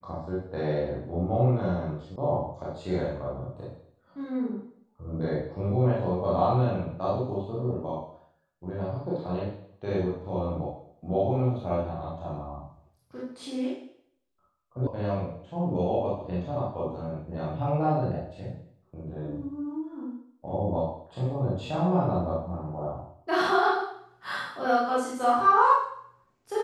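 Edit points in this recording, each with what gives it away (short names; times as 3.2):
2.16 sound cut off
14.87 sound cut off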